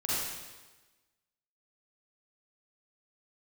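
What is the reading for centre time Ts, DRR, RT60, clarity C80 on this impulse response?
114 ms, −9.0 dB, 1.2 s, −1.0 dB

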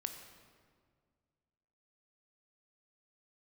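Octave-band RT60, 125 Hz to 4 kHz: 2.4, 2.2, 2.0, 1.8, 1.5, 1.2 seconds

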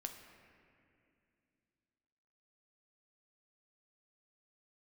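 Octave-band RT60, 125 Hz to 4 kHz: 3.2, 3.4, 2.7, 2.2, 2.5, 1.7 seconds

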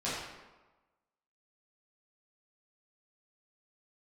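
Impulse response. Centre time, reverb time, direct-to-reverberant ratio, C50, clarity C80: 79 ms, 1.2 s, −11.0 dB, −1.0 dB, 2.0 dB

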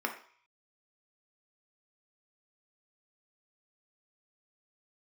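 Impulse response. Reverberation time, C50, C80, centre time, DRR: 0.50 s, 9.0 dB, 13.5 dB, 15 ms, 2.5 dB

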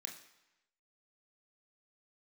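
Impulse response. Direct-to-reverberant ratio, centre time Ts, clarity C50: 1.5 dB, 24 ms, 8.0 dB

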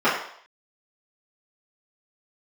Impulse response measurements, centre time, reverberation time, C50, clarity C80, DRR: 42 ms, 0.65 s, 4.0 dB, 7.5 dB, −13.0 dB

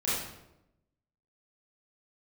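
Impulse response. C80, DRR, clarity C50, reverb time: 3.0 dB, −10.0 dB, −1.0 dB, 0.90 s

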